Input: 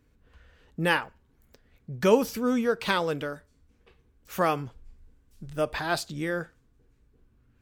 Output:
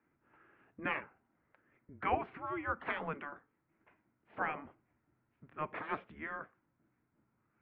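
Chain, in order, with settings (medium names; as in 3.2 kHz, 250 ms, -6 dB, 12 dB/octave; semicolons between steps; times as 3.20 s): spectral gate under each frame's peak -10 dB weak; mistuned SSB -150 Hz 280–2400 Hz; trim -2 dB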